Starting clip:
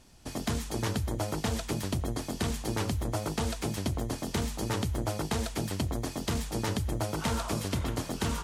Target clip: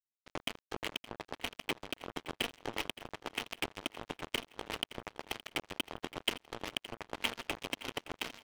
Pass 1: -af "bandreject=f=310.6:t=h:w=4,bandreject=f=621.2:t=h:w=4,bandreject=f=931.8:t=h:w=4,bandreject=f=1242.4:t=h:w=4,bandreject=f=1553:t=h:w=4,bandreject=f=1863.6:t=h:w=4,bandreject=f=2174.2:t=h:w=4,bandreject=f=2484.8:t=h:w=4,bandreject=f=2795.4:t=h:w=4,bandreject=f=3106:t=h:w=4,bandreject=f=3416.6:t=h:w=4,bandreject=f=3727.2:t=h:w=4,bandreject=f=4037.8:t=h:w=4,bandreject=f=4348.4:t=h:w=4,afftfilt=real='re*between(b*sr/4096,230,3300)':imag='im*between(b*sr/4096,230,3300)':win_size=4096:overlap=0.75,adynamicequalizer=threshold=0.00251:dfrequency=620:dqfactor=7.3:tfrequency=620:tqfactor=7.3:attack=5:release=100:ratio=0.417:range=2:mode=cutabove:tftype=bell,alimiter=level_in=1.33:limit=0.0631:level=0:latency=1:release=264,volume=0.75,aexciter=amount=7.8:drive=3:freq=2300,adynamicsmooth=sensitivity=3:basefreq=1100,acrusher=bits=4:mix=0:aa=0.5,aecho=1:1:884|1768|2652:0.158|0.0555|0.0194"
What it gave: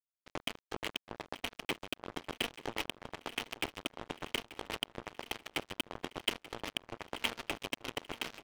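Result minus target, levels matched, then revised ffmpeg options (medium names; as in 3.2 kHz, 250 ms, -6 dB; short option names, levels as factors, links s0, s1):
echo 316 ms late
-af "bandreject=f=310.6:t=h:w=4,bandreject=f=621.2:t=h:w=4,bandreject=f=931.8:t=h:w=4,bandreject=f=1242.4:t=h:w=4,bandreject=f=1553:t=h:w=4,bandreject=f=1863.6:t=h:w=4,bandreject=f=2174.2:t=h:w=4,bandreject=f=2484.8:t=h:w=4,bandreject=f=2795.4:t=h:w=4,bandreject=f=3106:t=h:w=4,bandreject=f=3416.6:t=h:w=4,bandreject=f=3727.2:t=h:w=4,bandreject=f=4037.8:t=h:w=4,bandreject=f=4348.4:t=h:w=4,afftfilt=real='re*between(b*sr/4096,230,3300)':imag='im*between(b*sr/4096,230,3300)':win_size=4096:overlap=0.75,adynamicequalizer=threshold=0.00251:dfrequency=620:dqfactor=7.3:tfrequency=620:tqfactor=7.3:attack=5:release=100:ratio=0.417:range=2:mode=cutabove:tftype=bell,alimiter=level_in=1.33:limit=0.0631:level=0:latency=1:release=264,volume=0.75,aexciter=amount=7.8:drive=3:freq=2300,adynamicsmooth=sensitivity=3:basefreq=1100,acrusher=bits=4:mix=0:aa=0.5,aecho=1:1:568|1136|1704:0.158|0.0555|0.0194"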